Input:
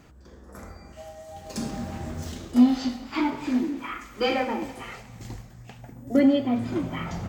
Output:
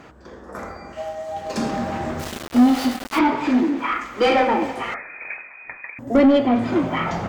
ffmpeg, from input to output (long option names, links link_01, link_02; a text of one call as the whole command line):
ffmpeg -i in.wav -filter_complex "[0:a]asplit=2[link_01][link_02];[link_02]highpass=frequency=720:poles=1,volume=20dB,asoftclip=type=tanh:threshold=-8dB[link_03];[link_01][link_03]amix=inputs=2:normalize=0,lowpass=frequency=1300:poles=1,volume=-6dB,asettb=1/sr,asplit=3[link_04][link_05][link_06];[link_04]atrim=end=2.194[link_07];[link_05]atrim=start=2.19:end=3.19,asetpts=PTS-STARTPTS,afade=type=in:duration=0.004:curve=qsin,afade=type=out:start_time=0.996:duration=0.004:curve=qsin,aeval=exprs='val(0)*gte(abs(val(0)),0.0335)':channel_layout=same[link_08];[link_06]atrim=start=3.186[link_09];[link_07][link_08]acrossfade=duration=0.004:curve1=hsin:curve2=qsin[link_10];[link_10][link_09]acrossfade=duration=0.004:curve1=qsin:curve2=hsin,asettb=1/sr,asplit=3[link_11][link_12][link_13];[link_11]atrim=end=4.944[link_14];[link_12]atrim=start=4.94:end=5.99,asetpts=PTS-STARTPTS,afade=type=in:duration=0.004:curve=qsin,afade=type=out:start_time=1.046:duration=0.004:curve=qsin,lowpass=frequency=2200:width_type=q:width=0.5098,lowpass=frequency=2200:width_type=q:width=0.6013,lowpass=frequency=2200:width_type=q:width=0.9,lowpass=frequency=2200:width_type=q:width=2.563,afreqshift=-2600[link_15];[link_13]atrim=start=5.986[link_16];[link_14][link_15]acrossfade=duration=0.004:curve1=hsin:curve2=qsin[link_17];[link_17][link_16]acrossfade=duration=0.004:curve1=qsin:curve2=hsin,volume=2.5dB" out.wav